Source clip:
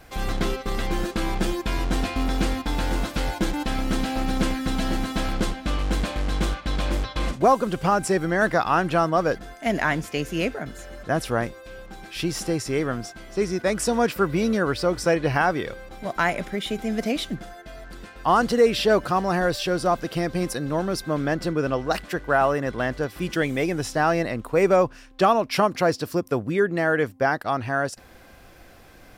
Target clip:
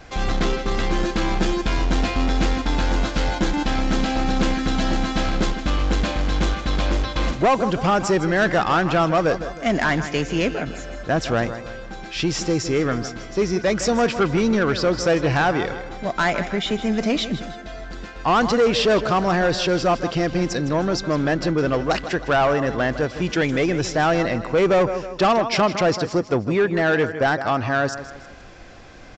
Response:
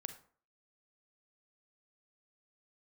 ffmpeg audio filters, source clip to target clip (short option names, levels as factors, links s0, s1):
-af "aecho=1:1:158|316|474|632:0.2|0.0838|0.0352|0.0148,aresample=16000,asoftclip=type=tanh:threshold=0.126,aresample=44100,volume=1.88"